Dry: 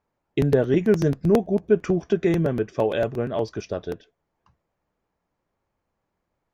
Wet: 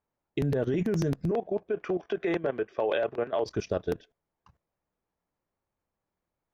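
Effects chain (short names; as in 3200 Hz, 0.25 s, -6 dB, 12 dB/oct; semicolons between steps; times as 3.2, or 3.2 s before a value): 1.31–3.46 three-band isolator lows -17 dB, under 370 Hz, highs -23 dB, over 4200 Hz; limiter -18 dBFS, peak gain reduction 10 dB; level quantiser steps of 15 dB; gain +3.5 dB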